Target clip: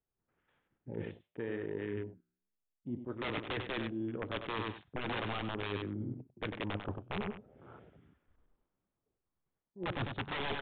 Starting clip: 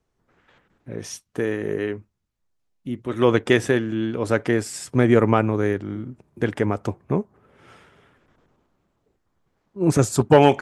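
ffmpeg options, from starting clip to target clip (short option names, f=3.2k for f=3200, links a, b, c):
-af "aresample=11025,aeval=exprs='(mod(4.22*val(0)+1,2)-1)/4.22':c=same,aresample=44100,aecho=1:1:97|194:0.355|0.0568,areverse,acompressor=threshold=-34dB:ratio=5,areverse,flanger=delay=7.1:depth=7.7:regen=-89:speed=0.66:shape=triangular,afwtdn=0.00282,aresample=8000,aresample=44100,volume=2.5dB"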